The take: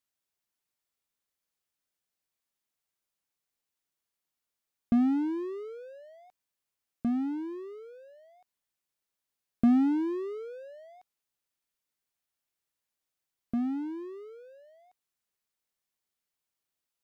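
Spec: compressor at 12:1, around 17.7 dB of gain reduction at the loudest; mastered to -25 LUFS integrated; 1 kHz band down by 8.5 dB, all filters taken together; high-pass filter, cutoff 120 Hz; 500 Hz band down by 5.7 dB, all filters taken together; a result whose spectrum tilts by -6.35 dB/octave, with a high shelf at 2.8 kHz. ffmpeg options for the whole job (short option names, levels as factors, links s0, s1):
-af "highpass=120,equalizer=f=500:t=o:g=-7.5,equalizer=f=1000:t=o:g=-8,highshelf=f=2800:g=-5.5,acompressor=threshold=0.0112:ratio=12,volume=10"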